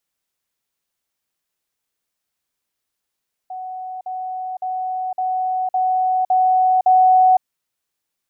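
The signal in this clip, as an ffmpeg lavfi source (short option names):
-f lavfi -i "aevalsrc='pow(10,(-27+3*floor(t/0.56))/20)*sin(2*PI*744*t)*clip(min(mod(t,0.56),0.51-mod(t,0.56))/0.005,0,1)':d=3.92:s=44100"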